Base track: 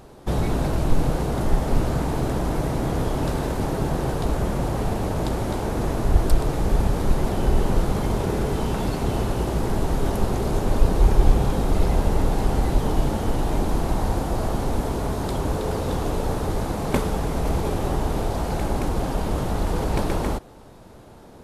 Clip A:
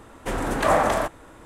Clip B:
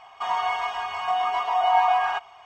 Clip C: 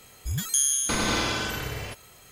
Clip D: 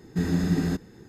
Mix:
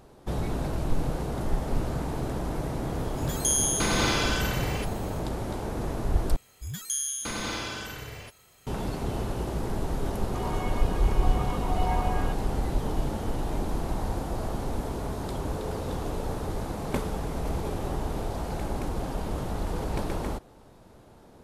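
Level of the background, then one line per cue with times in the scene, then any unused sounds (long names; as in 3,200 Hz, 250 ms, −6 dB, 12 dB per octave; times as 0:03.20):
base track −7 dB
0:02.91: mix in C −9.5 dB + automatic gain control
0:06.36: overwrite with C −7 dB
0:10.14: mix in B −12 dB
not used: A, D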